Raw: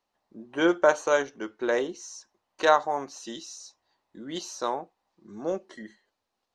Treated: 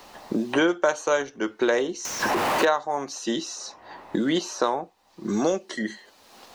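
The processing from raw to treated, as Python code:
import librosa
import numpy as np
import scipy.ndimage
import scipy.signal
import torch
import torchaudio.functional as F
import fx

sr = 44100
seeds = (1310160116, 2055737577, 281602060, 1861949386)

y = fx.zero_step(x, sr, step_db=-27.5, at=(2.05, 2.65))
y = fx.band_squash(y, sr, depth_pct=100)
y = y * 10.0 ** (3.5 / 20.0)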